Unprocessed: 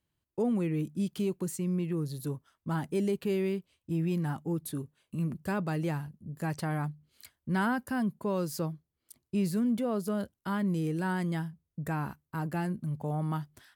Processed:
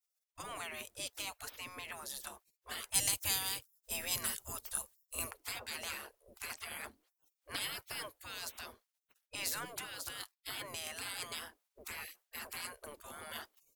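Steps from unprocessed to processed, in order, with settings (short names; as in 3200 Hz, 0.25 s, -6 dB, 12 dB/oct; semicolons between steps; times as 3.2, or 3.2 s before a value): spectral gate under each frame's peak -30 dB weak; 2.94–5.31 tone controls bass +9 dB, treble +12 dB; gain +10.5 dB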